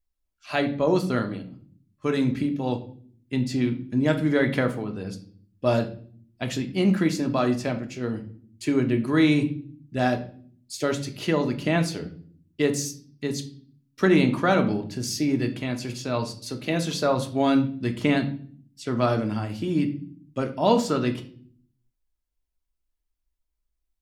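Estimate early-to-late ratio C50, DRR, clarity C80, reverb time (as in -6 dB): 12.5 dB, 5.0 dB, 17.0 dB, 0.50 s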